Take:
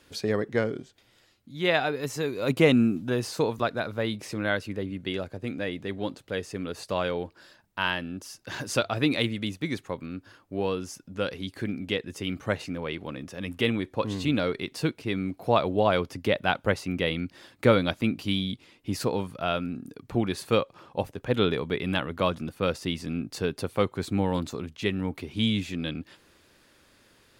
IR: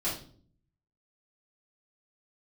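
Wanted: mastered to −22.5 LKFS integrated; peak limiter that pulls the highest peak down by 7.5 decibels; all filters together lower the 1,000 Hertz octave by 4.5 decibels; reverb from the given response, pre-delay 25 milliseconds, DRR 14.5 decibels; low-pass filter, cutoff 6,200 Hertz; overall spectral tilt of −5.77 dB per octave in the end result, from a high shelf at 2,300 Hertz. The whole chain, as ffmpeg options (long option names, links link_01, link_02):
-filter_complex "[0:a]lowpass=6200,equalizer=frequency=1000:width_type=o:gain=-4.5,highshelf=frequency=2300:gain=-8.5,alimiter=limit=-15dB:level=0:latency=1,asplit=2[link_01][link_02];[1:a]atrim=start_sample=2205,adelay=25[link_03];[link_02][link_03]afir=irnorm=-1:irlink=0,volume=-21dB[link_04];[link_01][link_04]amix=inputs=2:normalize=0,volume=8.5dB"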